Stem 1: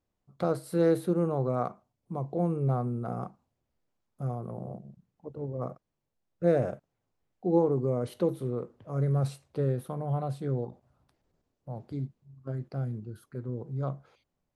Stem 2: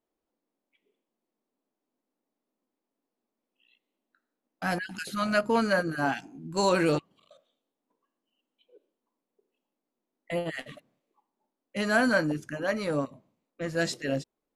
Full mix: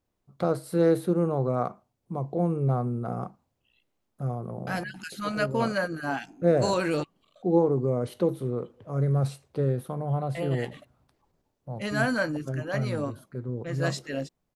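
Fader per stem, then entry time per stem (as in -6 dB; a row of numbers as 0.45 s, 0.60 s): +2.5 dB, -2.5 dB; 0.00 s, 0.05 s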